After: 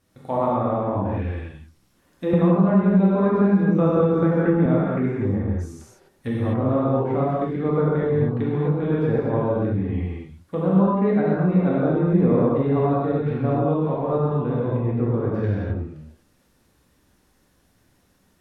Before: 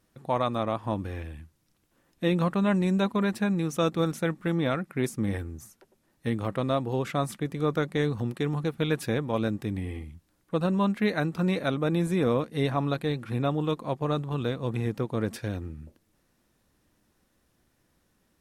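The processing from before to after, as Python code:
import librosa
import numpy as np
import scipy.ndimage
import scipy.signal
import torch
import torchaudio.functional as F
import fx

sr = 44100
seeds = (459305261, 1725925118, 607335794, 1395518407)

y = fx.env_lowpass_down(x, sr, base_hz=990.0, full_db=-26.0)
y = fx.rev_gated(y, sr, seeds[0], gate_ms=280, shape='flat', drr_db=-6.5)
y = fx.band_squash(y, sr, depth_pct=100, at=(2.33, 4.66))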